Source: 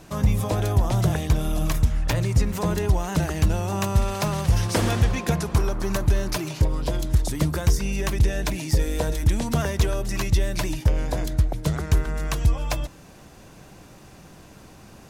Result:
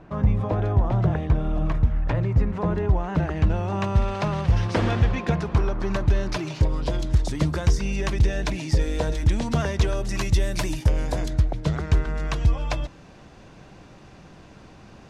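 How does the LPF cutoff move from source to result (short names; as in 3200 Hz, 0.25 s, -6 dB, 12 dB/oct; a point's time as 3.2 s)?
2.84 s 1700 Hz
3.95 s 3200 Hz
5.69 s 3200 Hz
6.75 s 5600 Hz
9.79 s 5600 Hz
10.48 s 11000 Hz
11.06 s 11000 Hz
11.52 s 4600 Hz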